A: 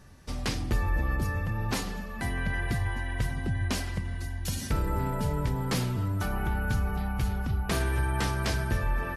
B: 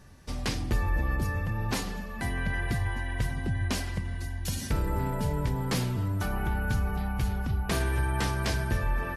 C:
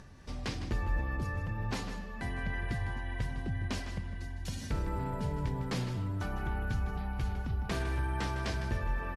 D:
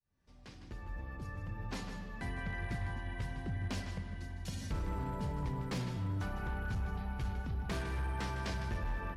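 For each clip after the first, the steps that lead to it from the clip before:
notch filter 1,300 Hz, Q 26
upward compression, threshold −40 dBFS; high-frequency loss of the air 55 metres; on a send: single-tap delay 156 ms −11 dB; on the sum: level −5.5 dB
fade in at the beginning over 2.27 s; on a send at −11 dB: convolution reverb RT60 2.6 s, pre-delay 3 ms; on the sum: hard clipping −28 dBFS, distortion −19 dB; level −3 dB

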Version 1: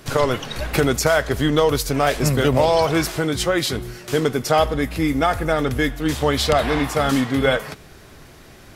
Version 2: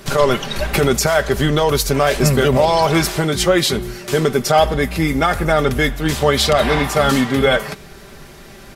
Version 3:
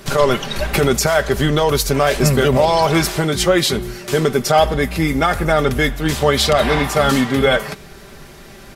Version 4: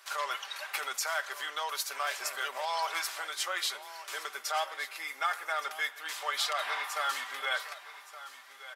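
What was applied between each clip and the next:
brickwall limiter −9 dBFS, peak gain reduction 6.5 dB; comb filter 5.1 ms, depth 49%; level +4.5 dB
no processing that can be heard
hard clipping −5 dBFS, distortion −29 dB; four-pole ladder high-pass 810 Hz, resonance 25%; single-tap delay 1,168 ms −15 dB; level −8 dB

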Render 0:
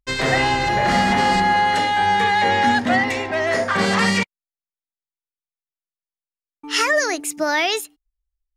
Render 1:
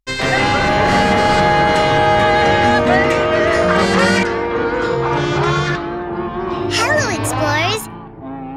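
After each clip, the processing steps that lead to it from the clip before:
delay with pitch and tempo change per echo 109 ms, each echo −5 semitones, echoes 3
level +2 dB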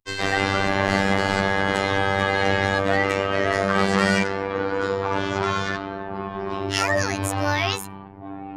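phases set to zero 97.7 Hz
level −4.5 dB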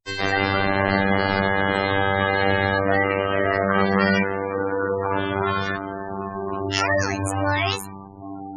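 gate on every frequency bin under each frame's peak −20 dB strong
level +1 dB

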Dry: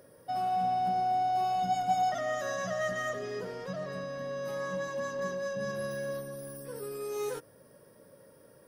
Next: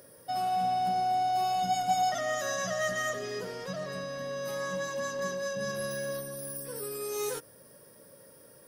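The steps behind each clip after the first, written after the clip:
high-shelf EQ 2,900 Hz +10 dB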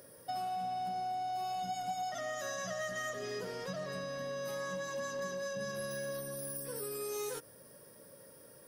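downward compressor 6 to 1, threshold −34 dBFS, peak gain reduction 11 dB
level −1.5 dB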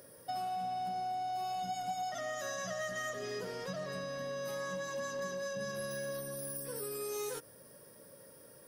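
no processing that can be heard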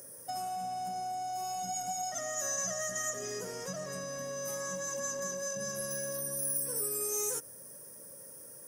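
high shelf with overshoot 5,200 Hz +8.5 dB, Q 3

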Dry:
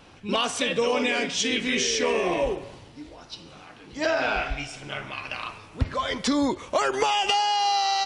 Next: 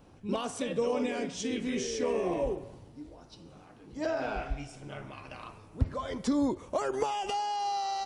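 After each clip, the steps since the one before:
parametric band 2,900 Hz −14 dB 3 octaves
level −2.5 dB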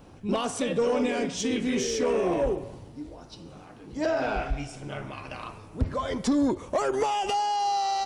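soft clipping −23.5 dBFS, distortion −16 dB
level +6.5 dB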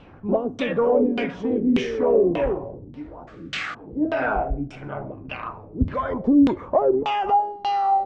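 sound drawn into the spectrogram noise, 0:03.27–0:03.75, 1,100–8,300 Hz −31 dBFS
auto-filter low-pass saw down 1.7 Hz 220–3,200 Hz
level +2.5 dB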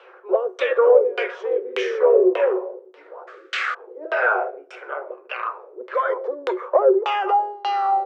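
Chebyshev high-pass with heavy ripple 360 Hz, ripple 9 dB
level +8.5 dB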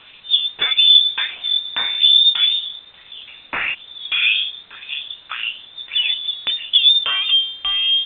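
in parallel at −10 dB: bit-depth reduction 6 bits, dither triangular
on the sum: voice inversion scrambler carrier 4,000 Hz

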